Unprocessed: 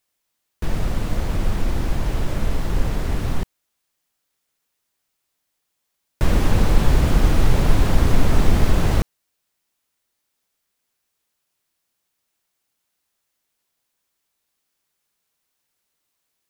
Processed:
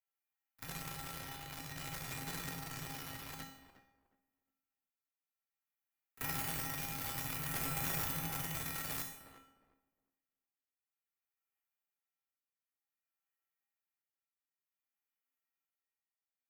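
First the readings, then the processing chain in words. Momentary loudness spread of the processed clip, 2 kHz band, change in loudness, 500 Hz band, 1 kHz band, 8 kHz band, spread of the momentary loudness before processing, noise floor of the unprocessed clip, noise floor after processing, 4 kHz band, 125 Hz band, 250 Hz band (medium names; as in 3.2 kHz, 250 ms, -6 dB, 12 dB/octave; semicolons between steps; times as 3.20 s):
11 LU, -12.0 dB, -17.5 dB, -24.0 dB, -15.5 dB, -6.5 dB, 8 LU, -76 dBFS, under -85 dBFS, -11.5 dB, -25.0 dB, -23.0 dB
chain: local Wiener filter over 9 samples; high-order bell 5.7 kHz -12.5 dB; tremolo triangle 0.54 Hz, depth 65%; in parallel at -11.5 dB: fuzz box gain 41 dB, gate -41 dBFS; on the sum: pre-emphasis filter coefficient 0.97; on a send: tape echo 360 ms, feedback 24%, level -10 dB, low-pass 1.1 kHz; on the sum: frequency shift -170 Hz; feedback comb 270 Hz, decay 0.58 s, harmonics odd, mix 90%; pre-echo 36 ms -20 dB; Schroeder reverb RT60 0.6 s, combs from 32 ms, DRR 7.5 dB; trim +16.5 dB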